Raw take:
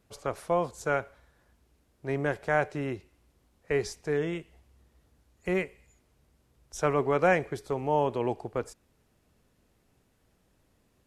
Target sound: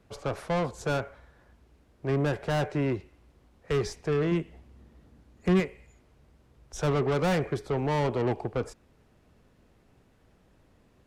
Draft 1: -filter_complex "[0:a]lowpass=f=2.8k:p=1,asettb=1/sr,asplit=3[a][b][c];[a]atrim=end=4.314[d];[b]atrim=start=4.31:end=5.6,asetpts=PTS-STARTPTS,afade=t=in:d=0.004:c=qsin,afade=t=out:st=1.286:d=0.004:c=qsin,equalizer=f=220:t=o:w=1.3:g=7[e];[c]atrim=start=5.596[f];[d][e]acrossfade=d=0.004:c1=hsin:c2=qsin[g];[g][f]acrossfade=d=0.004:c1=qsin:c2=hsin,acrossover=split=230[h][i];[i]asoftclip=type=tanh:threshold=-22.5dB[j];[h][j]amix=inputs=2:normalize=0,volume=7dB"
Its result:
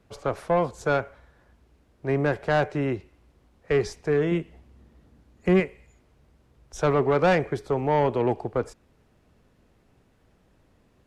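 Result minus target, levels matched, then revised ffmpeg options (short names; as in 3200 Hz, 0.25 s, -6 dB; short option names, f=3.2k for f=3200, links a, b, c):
soft clip: distortion -8 dB
-filter_complex "[0:a]lowpass=f=2.8k:p=1,asettb=1/sr,asplit=3[a][b][c];[a]atrim=end=4.314[d];[b]atrim=start=4.31:end=5.6,asetpts=PTS-STARTPTS,afade=t=in:d=0.004:c=qsin,afade=t=out:st=1.286:d=0.004:c=qsin,equalizer=f=220:t=o:w=1.3:g=7[e];[c]atrim=start=5.596[f];[d][e]acrossfade=d=0.004:c1=hsin:c2=qsin[g];[g][f]acrossfade=d=0.004:c1=qsin:c2=hsin,acrossover=split=230[h][i];[i]asoftclip=type=tanh:threshold=-33dB[j];[h][j]amix=inputs=2:normalize=0,volume=7dB"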